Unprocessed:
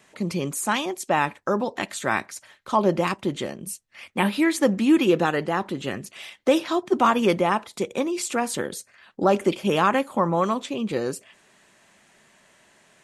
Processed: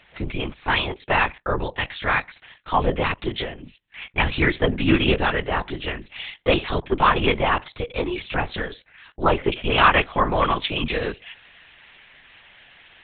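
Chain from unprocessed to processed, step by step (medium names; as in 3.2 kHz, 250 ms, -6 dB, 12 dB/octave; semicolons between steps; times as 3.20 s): LPC vocoder at 8 kHz whisper; peaking EQ 2.8 kHz +8 dB 2.2 oct, from 9.78 s +15 dB; trim -1 dB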